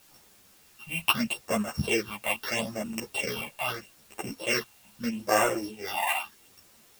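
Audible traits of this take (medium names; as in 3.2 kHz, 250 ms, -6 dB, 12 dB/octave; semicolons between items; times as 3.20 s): a buzz of ramps at a fixed pitch in blocks of 16 samples; phasing stages 6, 0.78 Hz, lowest notch 370–4300 Hz; a quantiser's noise floor 10-bit, dither triangular; a shimmering, thickened sound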